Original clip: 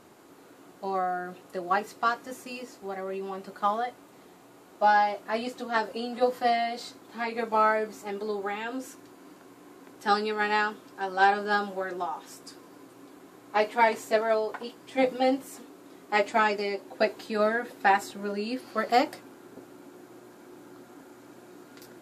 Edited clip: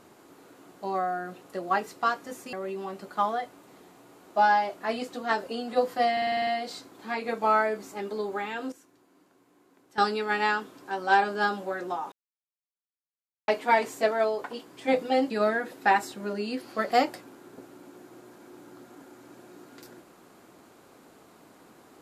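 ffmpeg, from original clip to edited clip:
-filter_complex "[0:a]asplit=14[a][b][c][d][e][f][g][h][i][j][k][l][m][n];[a]atrim=end=2.532[o];[b]atrim=start=2.978:end=6.622[p];[c]atrim=start=6.568:end=6.622[q];[d]atrim=start=6.568:end=6.622[r];[e]atrim=start=6.568:end=6.622[s];[f]atrim=start=6.568:end=6.622[t];[g]atrim=start=6.568:end=6.622[u];[h]atrim=start=6.568:end=6.622[v];[i]atrim=start=6.568:end=8.822[w];[j]atrim=start=8.818:end=10.082,asetpts=PTS-STARTPTS,volume=-12dB[x];[k]atrim=start=10.078:end=12.22,asetpts=PTS-STARTPTS,afade=t=out:st=2.138:d=0.004:c=hsin[y];[l]atrim=start=12.22:end=13.58,asetpts=PTS-STARTPTS,volume=0[z];[m]atrim=start=13.58:end=15.402,asetpts=PTS-STARTPTS,afade=t=in:d=0.004:c=hsin[aa];[n]atrim=start=17.288[ab];[o][p]acrossfade=d=0.004:c1=hsin:c2=hsin[ac];[ac][q]acrossfade=d=0.004:c1=hsin:c2=hsin[ad];[ad][r]acrossfade=d=0.004:c1=hsin:c2=hsin[ae];[ae][s]acrossfade=d=0.004:c1=hsin:c2=hsin[af];[af][t]acrossfade=d=0.004:c1=hsin:c2=hsin[ag];[ag][u]acrossfade=d=0.004:c1=hsin:c2=hsin[ah];[ah][v]acrossfade=d=0.004:c1=hsin:c2=hsin[ai];[ai][w]acrossfade=d=0.004:c1=hsin:c2=hsin[aj];[aj][x]acrossfade=d=0.004:c1=hsin:c2=hsin[ak];[y][z][aa]concat=n=3:v=0:a=1[al];[ak][al]acrossfade=d=0.004:c1=hsin:c2=hsin[am];[am][ab]acrossfade=d=0.004:c1=hsin:c2=hsin"

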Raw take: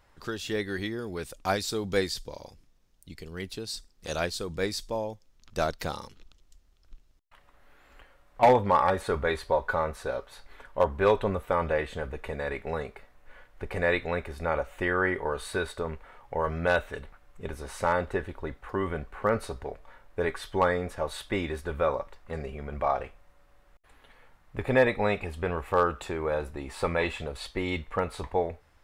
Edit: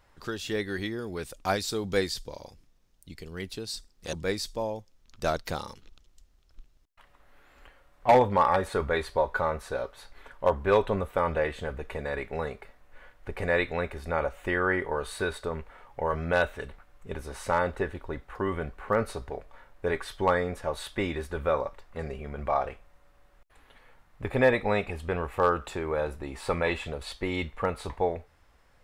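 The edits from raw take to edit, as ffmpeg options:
-filter_complex "[0:a]asplit=2[a][b];[a]atrim=end=4.132[c];[b]atrim=start=4.468[d];[c][d]acrossfade=d=0.004:c1=hsin:c2=hsin"

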